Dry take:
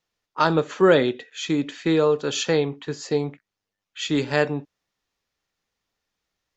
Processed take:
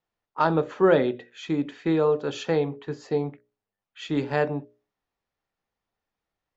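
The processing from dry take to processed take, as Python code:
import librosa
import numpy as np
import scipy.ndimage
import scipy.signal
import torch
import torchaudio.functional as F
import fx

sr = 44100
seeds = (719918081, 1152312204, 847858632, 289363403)

y = fx.lowpass(x, sr, hz=1500.0, slope=6)
y = fx.peak_eq(y, sr, hz=780.0, db=3.5, octaves=0.65)
y = fx.hum_notches(y, sr, base_hz=60, count=10)
y = y * librosa.db_to_amplitude(-2.0)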